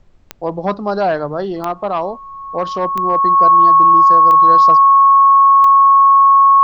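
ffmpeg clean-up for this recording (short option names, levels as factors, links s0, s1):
-af "adeclick=t=4,bandreject=f=1100:w=30,agate=range=0.0891:threshold=0.0631"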